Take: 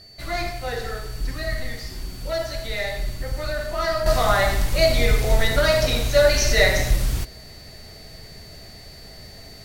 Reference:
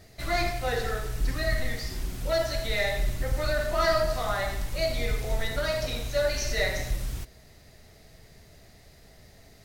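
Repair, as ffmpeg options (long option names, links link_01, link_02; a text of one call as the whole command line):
ffmpeg -i in.wav -af "bandreject=frequency=4500:width=30,asetnsamples=nb_out_samples=441:pad=0,asendcmd='4.06 volume volume -10dB',volume=0dB" out.wav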